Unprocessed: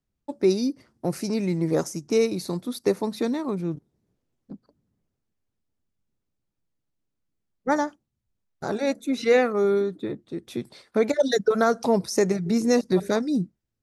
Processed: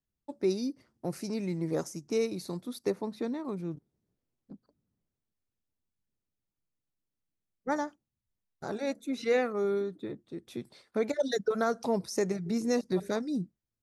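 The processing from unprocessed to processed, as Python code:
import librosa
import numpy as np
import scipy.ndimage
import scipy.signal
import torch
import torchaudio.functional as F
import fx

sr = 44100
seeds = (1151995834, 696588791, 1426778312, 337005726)

y = fx.high_shelf(x, sr, hz=4000.0, db=-10.0, at=(2.9, 3.45))
y = y * 10.0 ** (-8.0 / 20.0)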